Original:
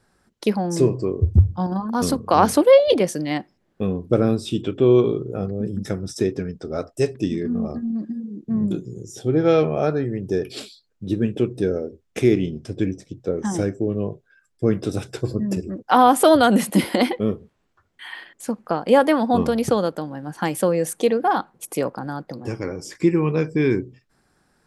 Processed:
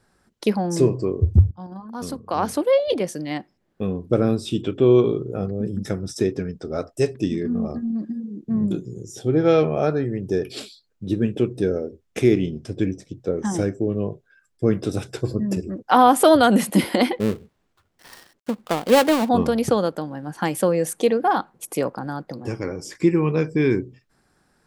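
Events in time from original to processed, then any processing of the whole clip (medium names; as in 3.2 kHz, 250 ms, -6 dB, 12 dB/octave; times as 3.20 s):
1.51–4.61 s: fade in, from -14.5 dB
17.20–19.29 s: dead-time distortion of 0.21 ms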